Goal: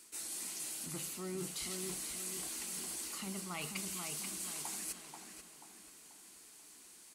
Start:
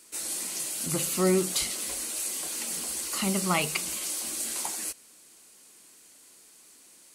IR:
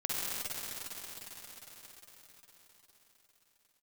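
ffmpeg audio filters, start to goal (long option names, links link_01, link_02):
-filter_complex "[0:a]equalizer=frequency=540:width=4.8:gain=-8,areverse,acompressor=threshold=-36dB:ratio=10,areverse,asplit=2[link_01][link_02];[link_02]adelay=485,lowpass=frequency=2900:poles=1,volume=-4dB,asplit=2[link_03][link_04];[link_04]adelay=485,lowpass=frequency=2900:poles=1,volume=0.44,asplit=2[link_05][link_06];[link_06]adelay=485,lowpass=frequency=2900:poles=1,volume=0.44,asplit=2[link_07][link_08];[link_08]adelay=485,lowpass=frequency=2900:poles=1,volume=0.44,asplit=2[link_09][link_10];[link_10]adelay=485,lowpass=frequency=2900:poles=1,volume=0.44,asplit=2[link_11][link_12];[link_12]adelay=485,lowpass=frequency=2900:poles=1,volume=0.44[link_13];[link_01][link_03][link_05][link_07][link_09][link_11][link_13]amix=inputs=7:normalize=0,volume=-3dB"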